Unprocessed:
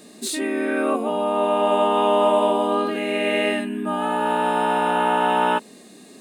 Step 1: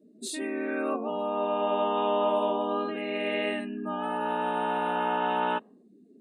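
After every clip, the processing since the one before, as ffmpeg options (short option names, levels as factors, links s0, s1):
-af "afftdn=nr=31:nf=-39,volume=0.398"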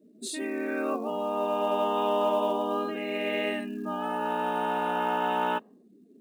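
-af "acrusher=bits=8:mode=log:mix=0:aa=0.000001"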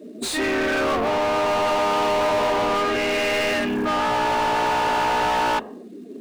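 -filter_complex "[0:a]asplit=2[s0][s1];[s1]highpass=f=720:p=1,volume=44.7,asoftclip=type=tanh:threshold=0.178[s2];[s0][s2]amix=inputs=2:normalize=0,lowpass=f=3200:p=1,volume=0.501,bandreject=f=50:t=h:w=6,bandreject=f=100:t=h:w=6,bandreject=f=150:t=h:w=6,bandreject=f=200:t=h:w=6"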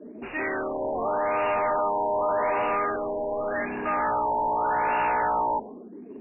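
-filter_complex "[0:a]acrossover=split=510[s0][s1];[s0]asoftclip=type=tanh:threshold=0.0237[s2];[s2][s1]amix=inputs=2:normalize=0,afftfilt=real='re*lt(b*sr/1024,990*pow(2900/990,0.5+0.5*sin(2*PI*0.85*pts/sr)))':imag='im*lt(b*sr/1024,990*pow(2900/990,0.5+0.5*sin(2*PI*0.85*pts/sr)))':win_size=1024:overlap=0.75,volume=0.75"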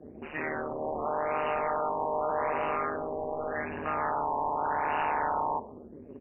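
-filter_complex "[0:a]tremolo=f=150:d=0.947,asplit=2[s0][s1];[s1]adelay=64,lowpass=f=1300:p=1,volume=0.126,asplit=2[s2][s3];[s3]adelay=64,lowpass=f=1300:p=1,volume=0.38,asplit=2[s4][s5];[s5]adelay=64,lowpass=f=1300:p=1,volume=0.38[s6];[s0][s2][s4][s6]amix=inputs=4:normalize=0,volume=0.891"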